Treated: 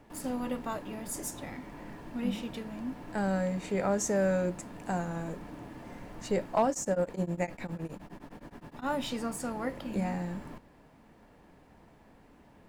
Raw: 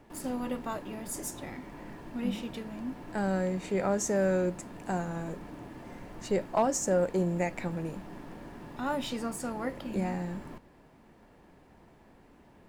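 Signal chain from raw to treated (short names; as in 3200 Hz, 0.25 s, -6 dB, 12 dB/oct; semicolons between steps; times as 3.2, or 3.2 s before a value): notch 370 Hz, Q 12; 6.7–8.88 beating tremolo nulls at 9.7 Hz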